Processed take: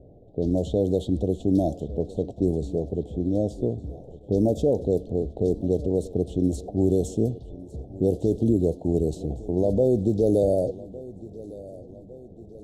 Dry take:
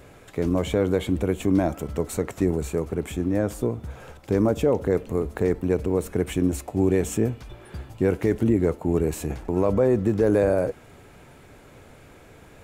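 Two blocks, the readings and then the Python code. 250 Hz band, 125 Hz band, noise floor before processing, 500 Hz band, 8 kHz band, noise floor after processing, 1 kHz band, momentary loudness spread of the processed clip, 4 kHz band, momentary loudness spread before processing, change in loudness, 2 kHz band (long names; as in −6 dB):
−0.5 dB, 0.0 dB, −49 dBFS, −0.5 dB, −9.0 dB, −46 dBFS, −6.0 dB, 18 LU, can't be measured, 9 LU, −1.0 dB, below −35 dB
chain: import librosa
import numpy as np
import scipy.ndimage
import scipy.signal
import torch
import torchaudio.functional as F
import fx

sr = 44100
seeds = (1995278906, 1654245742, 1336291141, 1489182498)

y = fx.env_lowpass(x, sr, base_hz=650.0, full_db=-16.0)
y = scipy.signal.sosfilt(scipy.signal.ellip(3, 1.0, 40, [690.0, 3700.0], 'bandstop', fs=sr, output='sos'), y)
y = fx.echo_feedback(y, sr, ms=1157, feedback_pct=54, wet_db=-19.0)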